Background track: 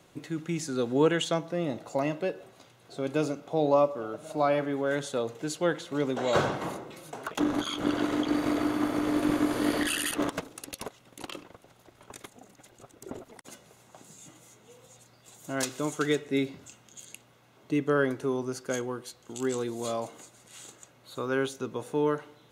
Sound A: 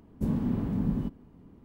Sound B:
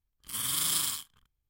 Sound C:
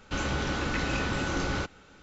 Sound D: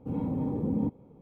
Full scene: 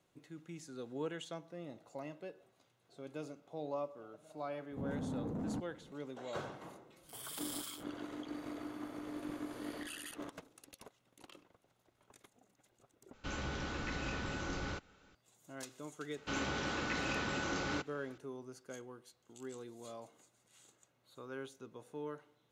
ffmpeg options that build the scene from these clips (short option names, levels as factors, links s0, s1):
-filter_complex "[3:a]asplit=2[s0][s1];[0:a]volume=0.141[s2];[4:a]asoftclip=type=tanh:threshold=0.0282[s3];[2:a]acrossover=split=690[s4][s5];[s5]adelay=30[s6];[s4][s6]amix=inputs=2:normalize=0[s7];[s1]highpass=f=190:p=1[s8];[s2]asplit=2[s9][s10];[s9]atrim=end=13.134[s11];[s0]atrim=end=2.02,asetpts=PTS-STARTPTS,volume=0.299[s12];[s10]atrim=start=15.146[s13];[s3]atrim=end=1.21,asetpts=PTS-STARTPTS,volume=0.562,afade=t=in:d=0.004:c=hsin,afade=t=out:st=1.206:d=0.004:c=hsin,adelay=4710[s14];[s7]atrim=end=1.49,asetpts=PTS-STARTPTS,volume=0.158,afade=t=in:d=0.004:c=hsin,afade=t=out:st=1.486:d=0.004:c=hsin,adelay=6770[s15];[s8]atrim=end=2.02,asetpts=PTS-STARTPTS,volume=0.501,afade=t=in:d=0.004:c=hsin,afade=t=out:st=2.016:d=0.004:c=hsin,adelay=16160[s16];[s11][s12]acrossfade=d=0.004:c1=hsin:c2=hsin[s17];[s17][s13]acrossfade=d=0.004:c1=hsin:c2=hsin[s18];[s18][s14][s15][s16]amix=inputs=4:normalize=0"